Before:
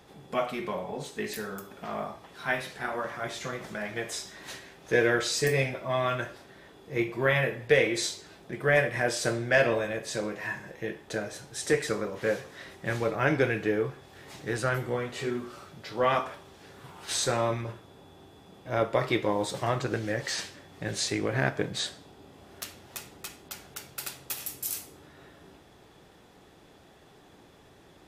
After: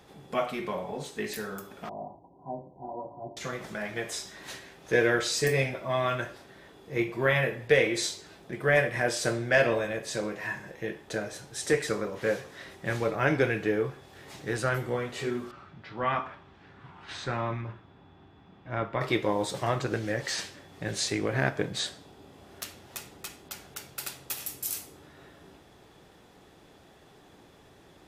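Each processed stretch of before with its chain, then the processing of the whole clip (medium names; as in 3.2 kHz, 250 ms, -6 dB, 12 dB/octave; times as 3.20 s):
1.89–3.37 s: rippled Chebyshev low-pass 1 kHz, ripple 6 dB + comb of notches 220 Hz
15.51–19.01 s: low-pass 2.4 kHz + peaking EQ 500 Hz -9 dB 1 oct
whole clip: none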